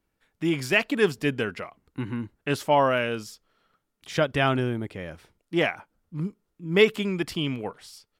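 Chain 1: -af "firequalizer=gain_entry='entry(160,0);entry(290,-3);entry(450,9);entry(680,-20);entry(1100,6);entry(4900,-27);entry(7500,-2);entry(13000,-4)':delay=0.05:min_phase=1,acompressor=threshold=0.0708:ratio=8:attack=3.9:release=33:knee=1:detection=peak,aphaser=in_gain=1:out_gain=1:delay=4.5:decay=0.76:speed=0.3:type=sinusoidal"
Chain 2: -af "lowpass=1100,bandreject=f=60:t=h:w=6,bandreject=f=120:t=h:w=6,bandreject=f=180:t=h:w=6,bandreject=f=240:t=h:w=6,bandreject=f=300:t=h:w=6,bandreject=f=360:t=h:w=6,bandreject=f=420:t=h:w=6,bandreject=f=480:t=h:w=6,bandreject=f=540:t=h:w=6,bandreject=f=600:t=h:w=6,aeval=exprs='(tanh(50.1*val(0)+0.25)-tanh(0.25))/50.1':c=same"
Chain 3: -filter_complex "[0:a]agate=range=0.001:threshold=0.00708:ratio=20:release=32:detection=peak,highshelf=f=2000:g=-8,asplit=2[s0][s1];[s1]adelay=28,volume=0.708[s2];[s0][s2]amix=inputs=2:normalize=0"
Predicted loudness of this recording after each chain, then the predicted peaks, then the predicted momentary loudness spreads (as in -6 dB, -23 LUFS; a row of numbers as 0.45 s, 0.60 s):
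-25.0 LUFS, -39.0 LUFS, -25.5 LUFS; -5.5 dBFS, -32.0 dBFS, -4.5 dBFS; 14 LU, 9 LU, 18 LU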